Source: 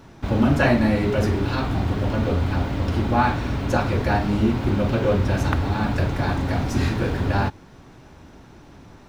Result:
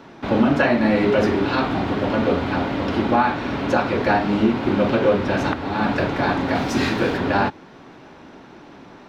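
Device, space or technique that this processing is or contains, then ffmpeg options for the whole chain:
DJ mixer with the lows and highs turned down: -filter_complex "[0:a]acrossover=split=180 4900:gain=0.126 1 0.178[link_01][link_02][link_03];[link_01][link_02][link_03]amix=inputs=3:normalize=0,alimiter=limit=-13dB:level=0:latency=1:release=364,asettb=1/sr,asplit=3[link_04][link_05][link_06];[link_04]atrim=end=6.554[link_07];[link_05]atrim=start=6.55:end=7.18,asetpts=PTS-STARTPTS,afade=type=in:duration=0.004:curve=qsin,afade=type=out:start_time=0.626:duration=0.004:curve=qsin,aemphasis=mode=production:type=cd[link_08];[link_06]atrim=start=7.176[link_09];[link_07][link_08]acrossfade=duration=0.004:curve1=hsin:curve2=qsin[link_10];[link_10][link_09]acrossfade=duration=0.004:curve1=qsin:curve2=hsin,volume=6dB"

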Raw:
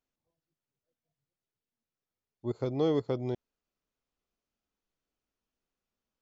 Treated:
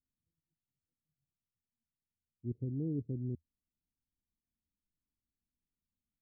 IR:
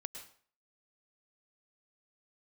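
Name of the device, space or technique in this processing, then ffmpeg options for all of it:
the neighbour's flat through the wall: -af "lowpass=frequency=270:width=0.5412,lowpass=frequency=270:width=1.3066,equalizer=frequency=81:width_type=o:width=0.41:gain=6,volume=-1dB"

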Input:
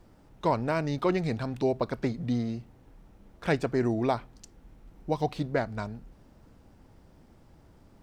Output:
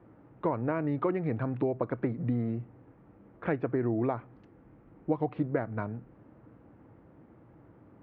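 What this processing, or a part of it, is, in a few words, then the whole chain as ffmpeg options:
bass amplifier: -af "acompressor=threshold=-29dB:ratio=4,highpass=frequency=63:width=0.5412,highpass=frequency=63:width=1.3066,equalizer=frequency=74:width_type=q:width=4:gain=-9,equalizer=frequency=120:width_type=q:width=4:gain=5,equalizer=frequency=310:width_type=q:width=4:gain=7,equalizer=frequency=490:width_type=q:width=4:gain=4,equalizer=frequency=1200:width_type=q:width=4:gain=3,lowpass=frequency=2200:width=0.5412,lowpass=frequency=2200:width=1.3066"

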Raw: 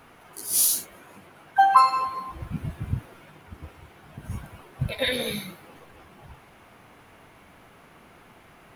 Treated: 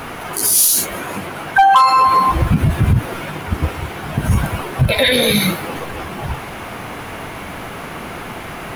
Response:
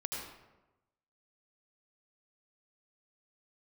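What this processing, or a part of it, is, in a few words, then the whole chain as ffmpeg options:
loud club master: -af "acompressor=threshold=-30dB:ratio=1.5,asoftclip=type=hard:threshold=-18dB,alimiter=level_in=27dB:limit=-1dB:release=50:level=0:latency=1,volume=-4dB"

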